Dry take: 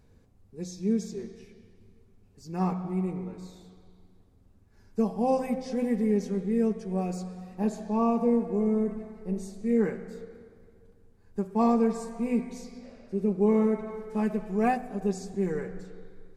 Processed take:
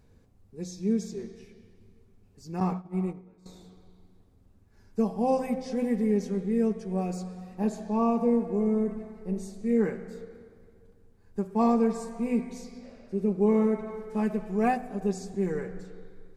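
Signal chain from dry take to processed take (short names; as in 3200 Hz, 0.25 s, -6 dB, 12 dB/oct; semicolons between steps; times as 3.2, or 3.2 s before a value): 2.6–3.46 gate -31 dBFS, range -16 dB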